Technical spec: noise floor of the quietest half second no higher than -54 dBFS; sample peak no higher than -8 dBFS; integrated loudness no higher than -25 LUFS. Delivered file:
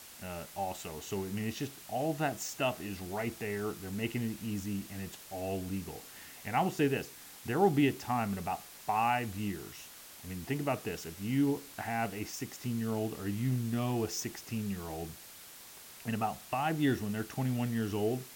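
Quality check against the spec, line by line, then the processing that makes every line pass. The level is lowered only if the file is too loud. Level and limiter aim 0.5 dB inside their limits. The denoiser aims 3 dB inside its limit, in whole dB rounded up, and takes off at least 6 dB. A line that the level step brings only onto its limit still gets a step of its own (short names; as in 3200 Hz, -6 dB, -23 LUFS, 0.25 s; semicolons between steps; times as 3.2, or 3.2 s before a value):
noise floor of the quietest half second -51 dBFS: fail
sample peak -13.5 dBFS: OK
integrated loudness -35.0 LUFS: OK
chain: denoiser 6 dB, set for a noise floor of -51 dBFS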